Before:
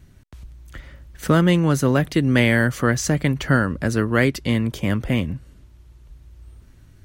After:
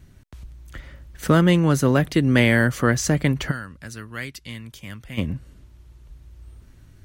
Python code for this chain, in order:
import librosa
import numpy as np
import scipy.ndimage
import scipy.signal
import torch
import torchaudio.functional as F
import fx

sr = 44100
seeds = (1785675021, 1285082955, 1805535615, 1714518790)

y = fx.tone_stack(x, sr, knobs='5-5-5', at=(3.5, 5.17), fade=0.02)